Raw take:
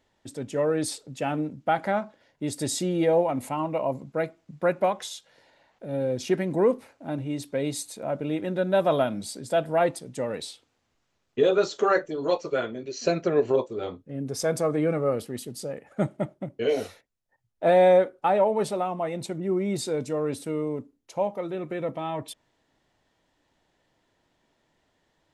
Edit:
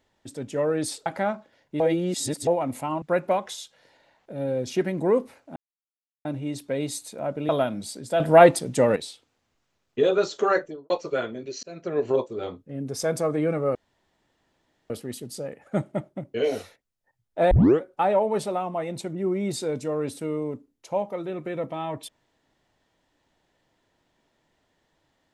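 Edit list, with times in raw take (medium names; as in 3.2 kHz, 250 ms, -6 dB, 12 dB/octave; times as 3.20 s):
1.06–1.74 s: delete
2.48–3.15 s: reverse
3.70–4.55 s: delete
7.09 s: insert silence 0.69 s
8.33–8.89 s: delete
9.60–10.36 s: gain +10 dB
11.99–12.30 s: studio fade out
13.03–13.53 s: fade in
15.15 s: insert room tone 1.15 s
17.76 s: tape start 0.30 s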